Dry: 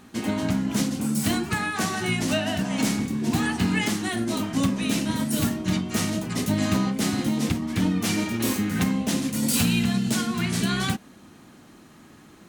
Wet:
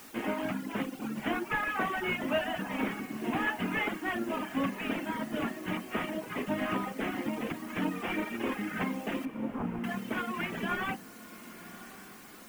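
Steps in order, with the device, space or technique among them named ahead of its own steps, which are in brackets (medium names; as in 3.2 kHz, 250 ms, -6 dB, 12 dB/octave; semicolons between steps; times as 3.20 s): army field radio (band-pass 340–3200 Hz; CVSD coder 16 kbps; white noise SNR 20 dB); reverb removal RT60 1.1 s; 9.25–9.84 s: inverse Chebyshev low-pass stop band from 3.9 kHz, stop band 60 dB; echo that smears into a reverb 1076 ms, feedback 49%, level -16 dB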